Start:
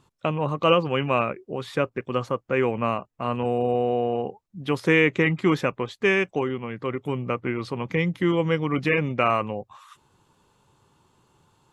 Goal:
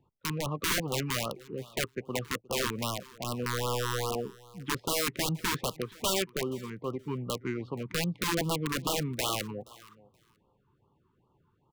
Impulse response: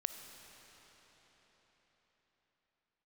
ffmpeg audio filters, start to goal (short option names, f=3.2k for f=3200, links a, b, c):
-filter_complex "[0:a]acrossover=split=170[a][b];[b]adynamicsmooth=sensitivity=2:basefreq=1.8k[c];[a][c]amix=inputs=2:normalize=0,aeval=exprs='(mod(6.68*val(0)+1,2)-1)/6.68':c=same,aecho=1:1:475|950:0.075|0.0112,afftfilt=real='re*(1-between(b*sr/1024,600*pow(2000/600,0.5+0.5*sin(2*PI*2.5*pts/sr))/1.41,600*pow(2000/600,0.5+0.5*sin(2*PI*2.5*pts/sr))*1.41))':imag='im*(1-between(b*sr/1024,600*pow(2000/600,0.5+0.5*sin(2*PI*2.5*pts/sr))/1.41,600*pow(2000/600,0.5+0.5*sin(2*PI*2.5*pts/sr))*1.41))':win_size=1024:overlap=0.75,volume=-6dB"